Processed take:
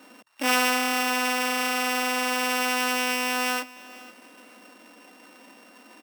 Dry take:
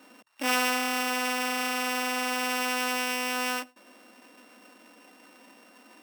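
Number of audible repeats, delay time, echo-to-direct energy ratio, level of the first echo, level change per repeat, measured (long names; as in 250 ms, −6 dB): 2, 501 ms, −20.0 dB, −20.0 dB, −13.0 dB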